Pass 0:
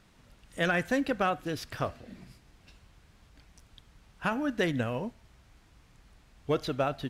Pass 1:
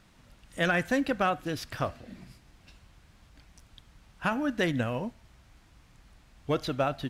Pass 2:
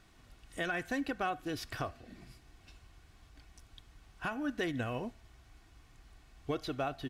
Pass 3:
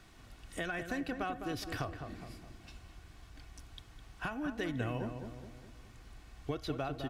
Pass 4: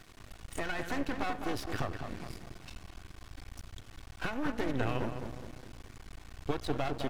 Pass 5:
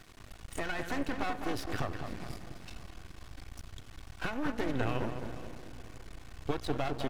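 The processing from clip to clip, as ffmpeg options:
ffmpeg -i in.wav -af "equalizer=frequency=430:width=5.4:gain=-4.5,volume=1.5dB" out.wav
ffmpeg -i in.wav -af "aecho=1:1:2.7:0.43,alimiter=limit=-22dB:level=0:latency=1:release=484,volume=-3dB" out.wav
ffmpeg -i in.wav -filter_complex "[0:a]acrossover=split=130[link_01][link_02];[link_02]acompressor=threshold=-44dB:ratio=2[link_03];[link_01][link_03]amix=inputs=2:normalize=0,asplit=2[link_04][link_05];[link_05]adelay=208,lowpass=frequency=1400:poles=1,volume=-6.5dB,asplit=2[link_06][link_07];[link_07]adelay=208,lowpass=frequency=1400:poles=1,volume=0.5,asplit=2[link_08][link_09];[link_09]adelay=208,lowpass=frequency=1400:poles=1,volume=0.5,asplit=2[link_10][link_11];[link_11]adelay=208,lowpass=frequency=1400:poles=1,volume=0.5,asplit=2[link_12][link_13];[link_13]adelay=208,lowpass=frequency=1400:poles=1,volume=0.5,asplit=2[link_14][link_15];[link_15]adelay=208,lowpass=frequency=1400:poles=1,volume=0.5[link_16];[link_04][link_06][link_08][link_10][link_12][link_14][link_16]amix=inputs=7:normalize=0,volume=4dB" out.wav
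ffmpeg -i in.wav -filter_complex "[0:a]acrossover=split=1400[link_01][link_02];[link_02]alimiter=level_in=14.5dB:limit=-24dB:level=0:latency=1:release=93,volume=-14.5dB[link_03];[link_01][link_03]amix=inputs=2:normalize=0,aeval=exprs='max(val(0),0)':channel_layout=same,volume=8.5dB" out.wav
ffmpeg -i in.wav -af "aecho=1:1:493|986|1479|1972:0.141|0.0593|0.0249|0.0105" out.wav

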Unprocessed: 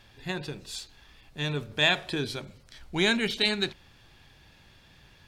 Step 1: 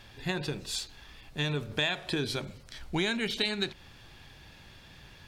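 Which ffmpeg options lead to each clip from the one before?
ffmpeg -i in.wav -af "acompressor=threshold=-31dB:ratio=5,volume=4dB" out.wav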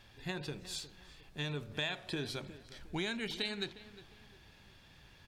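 ffmpeg -i in.wav -filter_complex "[0:a]asplit=2[link_01][link_02];[link_02]adelay=358,lowpass=frequency=2400:poles=1,volume=-15dB,asplit=2[link_03][link_04];[link_04]adelay=358,lowpass=frequency=2400:poles=1,volume=0.37,asplit=2[link_05][link_06];[link_06]adelay=358,lowpass=frequency=2400:poles=1,volume=0.37[link_07];[link_01][link_03][link_05][link_07]amix=inputs=4:normalize=0,volume=-7.5dB" out.wav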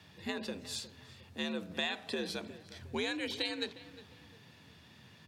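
ffmpeg -i in.wav -af "afreqshift=71,volume=1.5dB" out.wav

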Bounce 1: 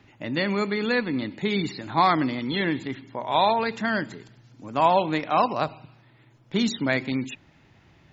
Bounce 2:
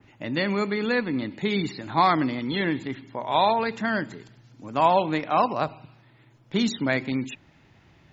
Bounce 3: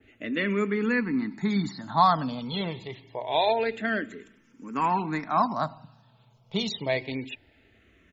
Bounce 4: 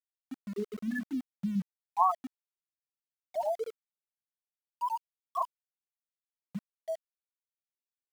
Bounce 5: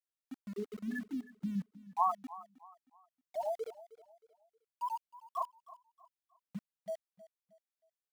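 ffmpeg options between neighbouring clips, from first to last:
ffmpeg -i in.wav -af "adynamicequalizer=threshold=0.00794:dfrequency=4500:dqfactor=0.73:tfrequency=4500:tqfactor=0.73:attack=5:release=100:ratio=0.375:range=2:mode=cutabove:tftype=bell" out.wav
ffmpeg -i in.wav -filter_complex "[0:a]aecho=1:1:4.5:0.31,asplit=2[link_01][link_02];[link_02]afreqshift=-0.26[link_03];[link_01][link_03]amix=inputs=2:normalize=1" out.wav
ffmpeg -i in.wav -af "afftfilt=real='re*gte(hypot(re,im),0.501)':imag='im*gte(hypot(re,im),0.501)':win_size=1024:overlap=0.75,aeval=exprs='val(0)*gte(abs(val(0)),0.01)':channel_layout=same,volume=-4.5dB" out.wav
ffmpeg -i in.wav -af "aecho=1:1:314|628|942:0.126|0.0453|0.0163,volume=-4.5dB" out.wav

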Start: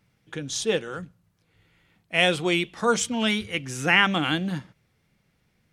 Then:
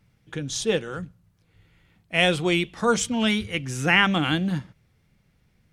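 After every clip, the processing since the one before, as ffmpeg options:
ffmpeg -i in.wav -af "lowshelf=frequency=130:gain=10" out.wav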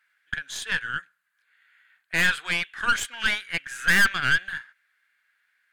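ffmpeg -i in.wav -af "highpass=frequency=1600:width_type=q:width=8.2,aeval=exprs='(tanh(5.62*val(0)+0.65)-tanh(0.65))/5.62':channel_layout=same,equalizer=frequency=5600:width=4.5:gain=-8.5" out.wav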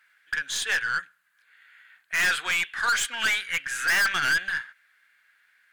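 ffmpeg -i in.wav -af "asoftclip=type=tanh:threshold=-26dB,volume=6.5dB" out.wav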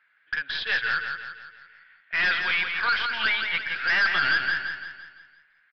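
ffmpeg -i in.wav -filter_complex "[0:a]adynamicsmooth=sensitivity=7:basefreq=2900,asplit=2[link_01][link_02];[link_02]aecho=0:1:170|340|510|680|850|1020:0.501|0.241|0.115|0.0554|0.0266|0.0128[link_03];[link_01][link_03]amix=inputs=2:normalize=0,aresample=11025,aresample=44100" out.wav

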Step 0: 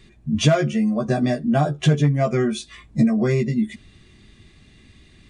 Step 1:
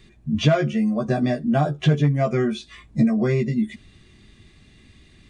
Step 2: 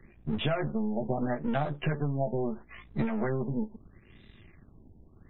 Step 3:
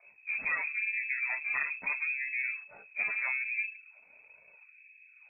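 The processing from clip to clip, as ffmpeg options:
ffmpeg -i in.wav -filter_complex "[0:a]acrossover=split=5100[link_01][link_02];[link_02]acompressor=threshold=-54dB:ratio=4:attack=1:release=60[link_03];[link_01][link_03]amix=inputs=2:normalize=0,volume=-1dB" out.wav
ffmpeg -i in.wav -filter_complex "[0:a]aeval=exprs='if(lt(val(0),0),0.251*val(0),val(0))':channel_layout=same,acrossover=split=120|730[link_01][link_02][link_03];[link_01]acompressor=threshold=-37dB:ratio=4[link_04];[link_02]acompressor=threshold=-30dB:ratio=4[link_05];[link_03]acompressor=threshold=-32dB:ratio=4[link_06];[link_04][link_05][link_06]amix=inputs=3:normalize=0,afftfilt=real='re*lt(b*sr/1024,940*pow(4100/940,0.5+0.5*sin(2*PI*0.76*pts/sr)))':imag='im*lt(b*sr/1024,940*pow(4100/940,0.5+0.5*sin(2*PI*0.76*pts/sr)))':win_size=1024:overlap=0.75" out.wav
ffmpeg -i in.wav -af "lowpass=frequency=2200:width_type=q:width=0.5098,lowpass=frequency=2200:width_type=q:width=0.6013,lowpass=frequency=2200:width_type=q:width=0.9,lowpass=frequency=2200:width_type=q:width=2.563,afreqshift=-2600,flanger=delay=1.8:depth=8.2:regen=-27:speed=0.45:shape=sinusoidal" out.wav

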